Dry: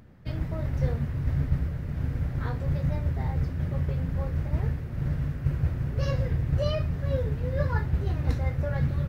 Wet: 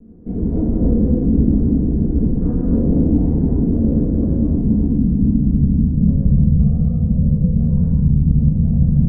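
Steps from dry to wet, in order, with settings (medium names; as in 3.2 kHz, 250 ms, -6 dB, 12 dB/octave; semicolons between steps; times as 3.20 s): comb filter that takes the minimum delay 4.2 ms; in parallel at +1 dB: peak limiter -23 dBFS, peak gain reduction 8 dB; on the sum: low-pass sweep 330 Hz -> 160 Hz, 4.03–6.32 s; gated-style reverb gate 350 ms flat, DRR -7 dB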